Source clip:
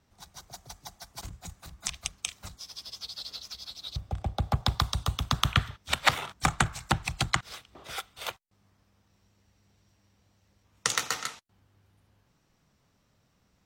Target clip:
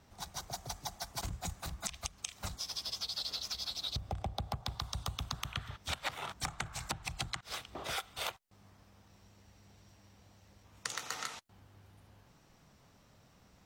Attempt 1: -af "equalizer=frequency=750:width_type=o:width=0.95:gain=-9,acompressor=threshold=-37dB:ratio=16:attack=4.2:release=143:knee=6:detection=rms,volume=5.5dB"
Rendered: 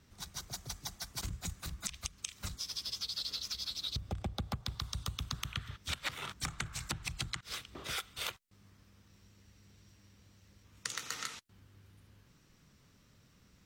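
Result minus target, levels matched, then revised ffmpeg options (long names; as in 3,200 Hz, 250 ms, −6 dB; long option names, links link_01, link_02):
1,000 Hz band −5.0 dB
-af "equalizer=frequency=750:width_type=o:width=0.95:gain=3,acompressor=threshold=-37dB:ratio=16:attack=4.2:release=143:knee=6:detection=rms,volume=5.5dB"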